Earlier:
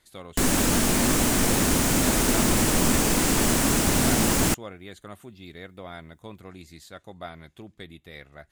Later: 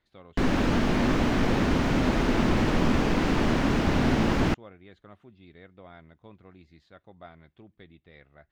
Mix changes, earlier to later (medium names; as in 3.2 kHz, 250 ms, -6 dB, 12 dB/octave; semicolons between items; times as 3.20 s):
speech -7.5 dB; master: add distance through air 260 m